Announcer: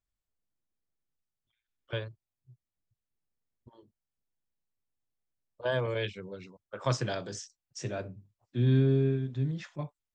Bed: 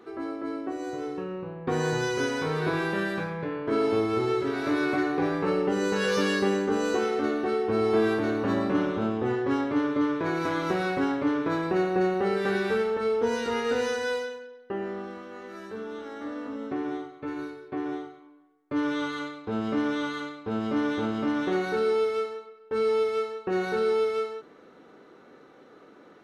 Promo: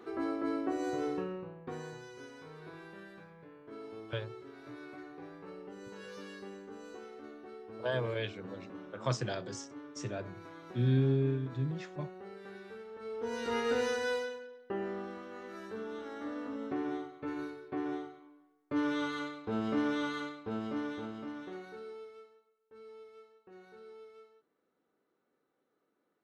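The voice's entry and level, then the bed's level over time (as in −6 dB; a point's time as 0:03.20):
2.20 s, −3.5 dB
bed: 0:01.14 −1 dB
0:02.04 −22 dB
0:12.84 −22 dB
0:13.55 −4.5 dB
0:20.26 −4.5 dB
0:22.44 −27.5 dB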